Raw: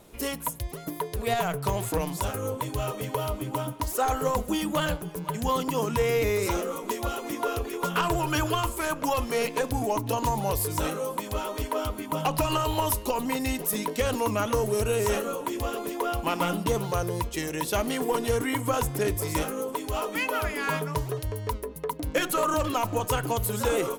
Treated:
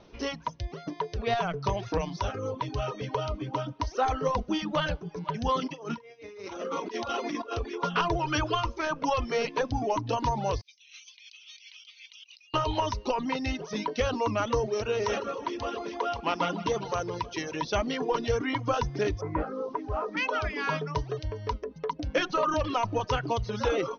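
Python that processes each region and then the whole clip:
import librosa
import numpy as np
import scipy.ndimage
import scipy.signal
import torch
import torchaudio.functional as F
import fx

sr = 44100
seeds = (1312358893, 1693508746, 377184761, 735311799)

y = fx.chain(x, sr, fx.highpass(hz=180.0, slope=12),
    fx.over_compress(threshold_db=-33.0, ratio=-0.5),
    fx.doubler(ms=44.0, db=-11), at=(5.6, 7.54))
y = fx.chain(y, sr, fx.cheby1_bandpass(low_hz=2300.0, high_hz=9900.0, order=4),
    fx.over_compress(threshold_db=-50.0, ratio=-1.0), at=(10.61, 12.54))
y = fx.chain(y, sr, fx.highpass(hz=200.0, slope=6),
    fx.echo_feedback(ms=156, feedback_pct=50, wet_db=-11.5), at=(14.67, 17.62))
y = fx.chain(y, sr, fx.lowpass(hz=1700.0, slope=24),
    fx.quant_dither(seeds[0], bits=10, dither='triangular'), at=(19.21, 20.17))
y = fx.dereverb_blind(y, sr, rt60_s=0.66)
y = scipy.signal.sosfilt(scipy.signal.cheby1(10, 1.0, 6200.0, 'lowpass', fs=sr, output='sos'), y)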